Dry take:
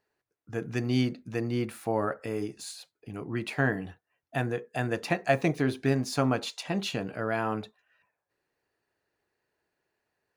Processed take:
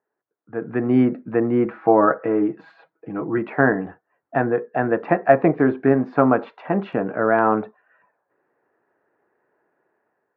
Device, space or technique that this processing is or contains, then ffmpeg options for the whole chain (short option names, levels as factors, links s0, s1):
action camera in a waterproof case: -filter_complex "[0:a]highpass=220,asettb=1/sr,asplit=3[s0][s1][s2];[s0]atrim=end=1.654[s3];[s1]atrim=start=1.65:end=3.38,asetpts=PTS-STARTPTS,afade=t=in:d=0.004:c=qsin,afade=t=out:st=1.726:d=0.004:c=qsin,aecho=1:1:6.2:0.55,atrim=end_sample=76293[s4];[s2]atrim=start=3.376[s5];[s3][s4]acrossfade=d=0.004:c1=hsin:c2=qsin[s6];[s6][s5]acrossfade=d=0.004:c1=qsin:c2=hsin,lowpass=f=1600:w=0.5412,lowpass=f=1600:w=1.3066,dynaudnorm=f=280:g=5:m=4.47,volume=1.12" -ar 44100 -c:a aac -b:a 96k